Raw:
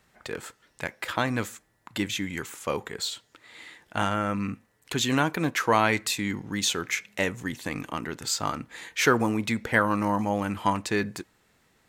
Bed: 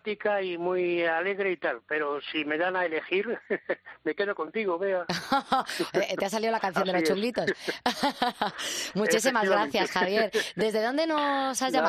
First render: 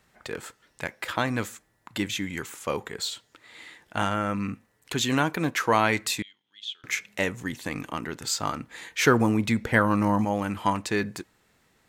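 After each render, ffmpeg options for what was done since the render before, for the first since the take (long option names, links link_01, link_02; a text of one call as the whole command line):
ffmpeg -i in.wav -filter_complex "[0:a]asettb=1/sr,asplit=3[link_01][link_02][link_03];[link_01]atrim=end=6.224[link_04];[link_02]atrim=start=6.22:end=6.84,asetpts=PTS-STARTPTS,afade=type=in:duration=0.004:curve=qsin,afade=type=out:start_time=0.616:duration=0.004:curve=qsin,bandpass=frequency=3300:width_type=q:width=14[link_05];[link_03]atrim=start=6.836[link_06];[link_04][link_05]acrossfade=duration=0.004:curve1=hsin:curve2=qsin[link_07];[link_07][link_06]acrossfade=duration=0.004:curve1=qsin:curve2=hsin,asettb=1/sr,asplit=3[link_08][link_09][link_10];[link_08]atrim=end=9.004[link_11];[link_09]atrim=start=9:end=10.25,asetpts=PTS-STARTPTS,afade=type=in:duration=0.004:curve=qsin,afade=type=out:start_time=1.246:duration=0.004:curve=qsin,lowshelf=frequency=260:gain=6.5[link_12];[link_10]atrim=start=10.246[link_13];[link_11][link_12]acrossfade=duration=0.004:curve1=hsin:curve2=qsin[link_14];[link_14][link_13]acrossfade=duration=0.004:curve1=qsin:curve2=hsin" out.wav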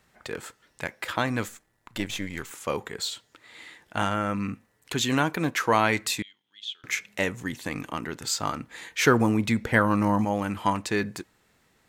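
ffmpeg -i in.wav -filter_complex "[0:a]asettb=1/sr,asplit=3[link_01][link_02][link_03];[link_01]atrim=end=1.484[link_04];[link_02]atrim=start=1.48:end=2.51,asetpts=PTS-STARTPTS,afade=type=in:duration=0.004:curve=qsin,afade=type=out:start_time=1.026:duration=0.004:curve=qsin,aeval=exprs='if(lt(val(0),0),0.447*val(0),val(0))':channel_layout=same[link_05];[link_03]atrim=start=2.506[link_06];[link_04][link_05]acrossfade=duration=0.004:curve1=hsin:curve2=qsin[link_07];[link_07][link_06]acrossfade=duration=0.004:curve1=qsin:curve2=hsin" out.wav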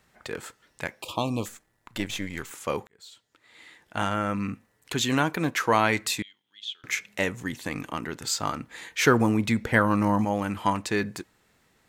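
ffmpeg -i in.wav -filter_complex "[0:a]asettb=1/sr,asplit=3[link_01][link_02][link_03];[link_01]atrim=end=1.024[link_04];[link_02]atrim=start=1.02:end=1.46,asetpts=PTS-STARTPTS,afade=type=in:duration=0.004:curve=qsin,afade=type=out:start_time=0.436:duration=0.004:curve=qsin,asuperstop=centerf=1700:order=12:qfactor=1.3[link_05];[link_03]atrim=start=1.456[link_06];[link_04][link_05]acrossfade=duration=0.004:curve1=hsin:curve2=qsin[link_07];[link_07][link_06]acrossfade=duration=0.004:curve1=qsin:curve2=hsin,asplit=2[link_08][link_09];[link_08]atrim=end=2.87,asetpts=PTS-STARTPTS,afade=type=out:start_time=2.866:duration=0.004:curve=hsin[link_10];[link_09]atrim=start=2.87,asetpts=PTS-STARTPTS,afade=type=in:duration=1.32[link_11];[link_10][link_11]concat=n=2:v=0:a=1" out.wav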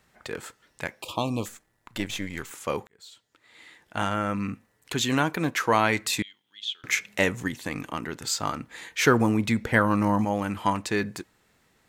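ffmpeg -i in.wav -filter_complex "[0:a]asplit=3[link_01][link_02][link_03];[link_01]atrim=end=6.132[link_04];[link_02]atrim=start=6.128:end=7.482,asetpts=PTS-STARTPTS,volume=3.5dB[link_05];[link_03]atrim=start=7.478[link_06];[link_04][link_05]acrossfade=duration=0.004:curve1=hsin:curve2=hsin[link_07];[link_07][link_06]acrossfade=duration=0.004:curve1=hsin:curve2=hsin" out.wav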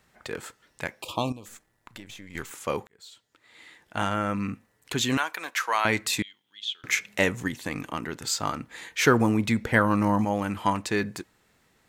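ffmpeg -i in.wav -filter_complex "[0:a]asettb=1/sr,asplit=3[link_01][link_02][link_03];[link_01]atrim=end=1.324[link_04];[link_02]atrim=start=1.32:end=2.35,asetpts=PTS-STARTPTS,afade=type=in:duration=0.004:curve=qsin,afade=type=out:start_time=1.026:duration=0.004:curve=qsin,acompressor=threshold=-39dB:ratio=8:attack=3.2:release=140:knee=1:detection=peak[link_05];[link_03]atrim=start=2.346[link_06];[link_04][link_05]acrossfade=duration=0.004:curve1=hsin:curve2=qsin[link_07];[link_07][link_06]acrossfade=duration=0.004:curve1=qsin:curve2=hsin,asettb=1/sr,asplit=3[link_08][link_09][link_10];[link_08]atrim=end=5.174[link_11];[link_09]atrim=start=5.17:end=5.85,asetpts=PTS-STARTPTS,afade=type=in:duration=0.004:curve=qsin,afade=type=out:start_time=0.676:duration=0.004:curve=qsin,highpass=930[link_12];[link_10]atrim=start=5.846[link_13];[link_11][link_12]acrossfade=duration=0.004:curve1=hsin:curve2=qsin[link_14];[link_14][link_13]acrossfade=duration=0.004:curve1=qsin:curve2=hsin" out.wav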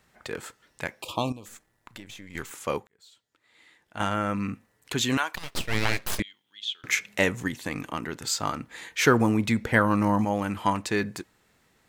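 ffmpeg -i in.wav -filter_complex "[0:a]asettb=1/sr,asplit=3[link_01][link_02][link_03];[link_01]atrim=end=5.354[link_04];[link_02]atrim=start=5.35:end=6.2,asetpts=PTS-STARTPTS,afade=type=in:duration=0.004:curve=qsin,afade=type=out:start_time=0.846:duration=0.004:curve=qsin,aeval=exprs='abs(val(0))':channel_layout=same[link_05];[link_03]atrim=start=6.196[link_06];[link_04][link_05]acrossfade=duration=0.004:curve1=hsin:curve2=qsin[link_07];[link_07][link_06]acrossfade=duration=0.004:curve1=qsin:curve2=hsin,asplit=3[link_08][link_09][link_10];[link_08]atrim=end=2.782[link_11];[link_09]atrim=start=2.778:end=4.002,asetpts=PTS-STARTPTS,volume=-7dB[link_12];[link_10]atrim=start=3.998[link_13];[link_11][link_12]acrossfade=duration=0.004:curve1=hsin:curve2=hsin[link_14];[link_14][link_13]acrossfade=duration=0.004:curve1=hsin:curve2=hsin" out.wav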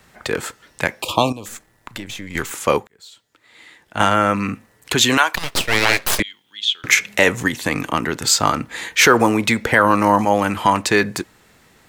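ffmpeg -i in.wav -filter_complex "[0:a]acrossover=split=350|1000[link_01][link_02][link_03];[link_01]acompressor=threshold=-35dB:ratio=6[link_04];[link_04][link_02][link_03]amix=inputs=3:normalize=0,alimiter=level_in=12.5dB:limit=-1dB:release=50:level=0:latency=1" out.wav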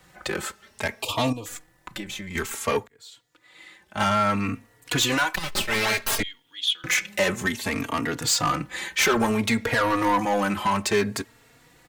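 ffmpeg -i in.wav -filter_complex "[0:a]asoftclip=type=tanh:threshold=-13.5dB,asplit=2[link_01][link_02];[link_02]adelay=3.6,afreqshift=0.59[link_03];[link_01][link_03]amix=inputs=2:normalize=1" out.wav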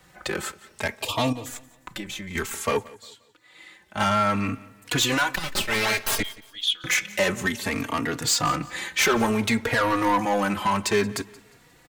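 ffmpeg -i in.wav -af "aecho=1:1:177|354|531:0.0891|0.0321|0.0116" out.wav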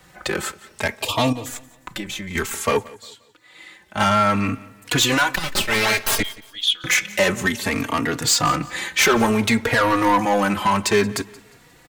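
ffmpeg -i in.wav -af "volume=4.5dB" out.wav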